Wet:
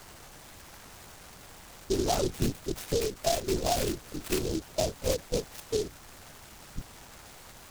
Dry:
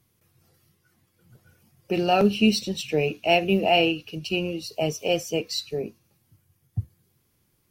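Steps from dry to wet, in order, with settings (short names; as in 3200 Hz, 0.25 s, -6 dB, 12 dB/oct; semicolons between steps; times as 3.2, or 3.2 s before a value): per-bin expansion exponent 1.5; HPF 270 Hz 12 dB/oct; high shelf 2800 Hz -7.5 dB; compressor 12:1, threshold -32 dBFS, peak gain reduction 15 dB; requantised 8-bit, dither triangular; air absorption 180 m; LPC vocoder at 8 kHz whisper; noise-modulated delay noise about 4900 Hz, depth 0.1 ms; gain +8 dB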